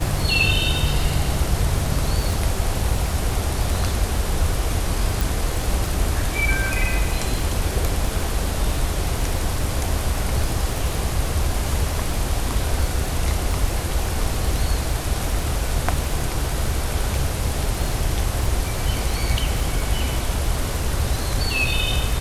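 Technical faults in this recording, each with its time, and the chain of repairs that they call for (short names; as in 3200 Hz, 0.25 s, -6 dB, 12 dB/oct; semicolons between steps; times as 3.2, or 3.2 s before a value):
crackle 31/s -25 dBFS
5.21 pop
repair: de-click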